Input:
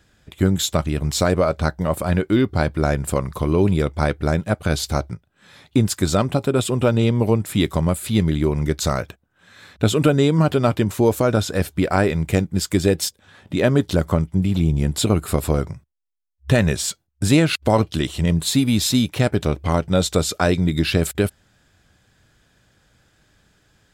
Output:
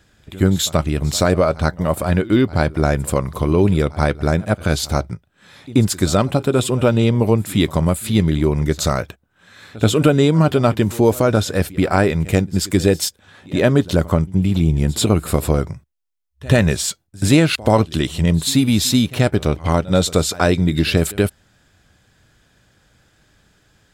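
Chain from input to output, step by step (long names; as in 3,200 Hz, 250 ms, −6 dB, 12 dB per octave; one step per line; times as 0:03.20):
echo ahead of the sound 82 ms −20.5 dB
level +2.5 dB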